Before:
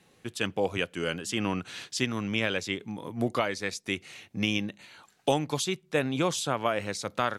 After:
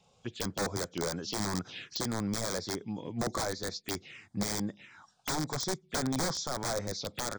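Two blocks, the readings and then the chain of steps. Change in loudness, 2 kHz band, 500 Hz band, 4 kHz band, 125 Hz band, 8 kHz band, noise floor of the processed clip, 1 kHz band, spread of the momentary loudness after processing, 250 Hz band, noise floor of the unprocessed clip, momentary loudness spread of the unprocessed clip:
-4.0 dB, -8.5 dB, -6.5 dB, -3.5 dB, -3.0 dB, +1.5 dB, -67 dBFS, -5.0 dB, 7 LU, -4.0 dB, -64 dBFS, 7 LU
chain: nonlinear frequency compression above 3200 Hz 1.5:1; wrapped overs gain 23 dB; envelope phaser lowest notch 290 Hz, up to 2800 Hz, full sweep at -30.5 dBFS

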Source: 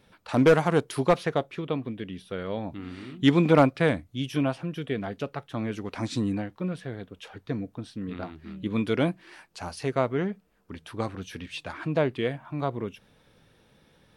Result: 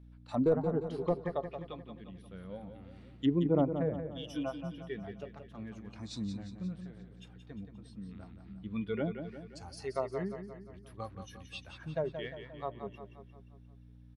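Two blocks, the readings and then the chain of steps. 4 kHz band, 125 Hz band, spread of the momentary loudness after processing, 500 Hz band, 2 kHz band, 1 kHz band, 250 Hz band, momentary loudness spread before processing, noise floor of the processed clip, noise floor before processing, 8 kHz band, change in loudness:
-12.0 dB, -9.5 dB, 20 LU, -9.0 dB, -16.0 dB, -12.0 dB, -8.5 dB, 18 LU, -55 dBFS, -63 dBFS, -11.5 dB, -9.0 dB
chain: spectral noise reduction 12 dB; hum 60 Hz, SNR 17 dB; treble ducked by the level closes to 570 Hz, closed at -20 dBFS; on a send: feedback echo 0.176 s, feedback 52%, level -8.5 dB; on the sum: gain -7 dB

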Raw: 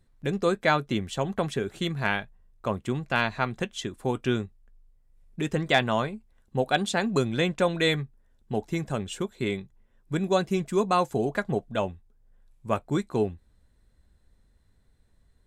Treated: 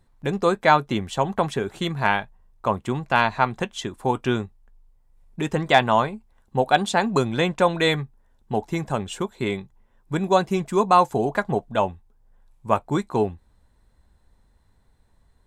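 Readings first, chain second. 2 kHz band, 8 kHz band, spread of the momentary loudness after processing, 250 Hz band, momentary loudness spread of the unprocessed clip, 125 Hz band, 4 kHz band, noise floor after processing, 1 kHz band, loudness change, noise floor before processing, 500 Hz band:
+4.0 dB, +2.5 dB, 11 LU, +3.0 dB, 9 LU, +2.5 dB, +2.5 dB, -61 dBFS, +9.0 dB, +5.0 dB, -64 dBFS, +4.0 dB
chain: bell 910 Hz +9 dB 0.75 oct; gain +2.5 dB

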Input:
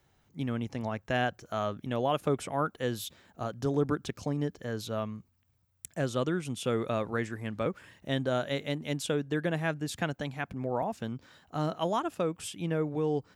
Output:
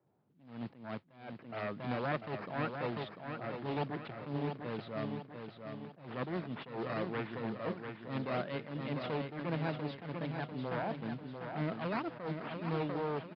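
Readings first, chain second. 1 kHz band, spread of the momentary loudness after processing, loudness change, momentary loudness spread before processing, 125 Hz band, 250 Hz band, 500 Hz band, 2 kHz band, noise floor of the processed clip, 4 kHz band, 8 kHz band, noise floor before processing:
-5.5 dB, 10 LU, -6.5 dB, 9 LU, -6.0 dB, -6.0 dB, -7.5 dB, -5.5 dB, -60 dBFS, -9.5 dB, under -35 dB, -70 dBFS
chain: one-sided fold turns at -29 dBFS; decimation with a swept rate 8×, swing 160% 2.2 Hz; HPF 130 Hz 24 dB/oct; low-pass opened by the level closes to 760 Hz, open at -30.5 dBFS; modulation noise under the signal 13 dB; air absorption 300 m; feedback echo 0.695 s, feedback 47%, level -6.5 dB; downsampling 11025 Hz; attack slew limiter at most 110 dB/s; gain -2 dB

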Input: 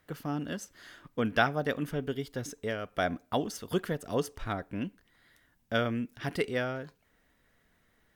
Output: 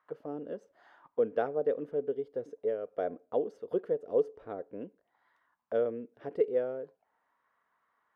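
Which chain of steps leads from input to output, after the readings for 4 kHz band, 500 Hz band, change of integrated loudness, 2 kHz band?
under -20 dB, +3.5 dB, -0.5 dB, -16.5 dB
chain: auto-wah 470–1100 Hz, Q 5.1, down, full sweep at -35.5 dBFS; gain +7.5 dB

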